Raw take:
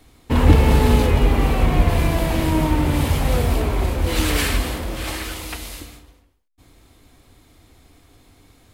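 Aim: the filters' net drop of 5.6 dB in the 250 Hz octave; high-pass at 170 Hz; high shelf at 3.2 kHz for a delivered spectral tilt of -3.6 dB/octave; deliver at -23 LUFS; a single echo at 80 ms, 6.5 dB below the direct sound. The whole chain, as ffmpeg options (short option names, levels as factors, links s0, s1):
-af "highpass=170,equalizer=f=250:t=o:g=-6,highshelf=f=3200:g=5.5,aecho=1:1:80:0.473,volume=0.944"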